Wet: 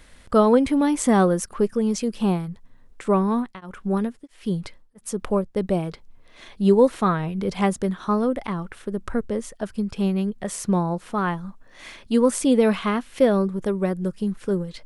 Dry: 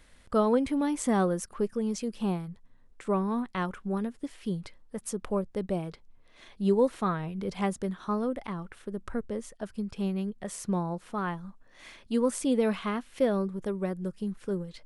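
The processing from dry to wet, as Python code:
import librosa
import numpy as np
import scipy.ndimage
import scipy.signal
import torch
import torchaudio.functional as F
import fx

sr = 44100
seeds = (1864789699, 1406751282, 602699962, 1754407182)

y = fx.tremolo_abs(x, sr, hz=1.5, at=(3.28, 5.56))
y = F.gain(torch.from_numpy(y), 8.0).numpy()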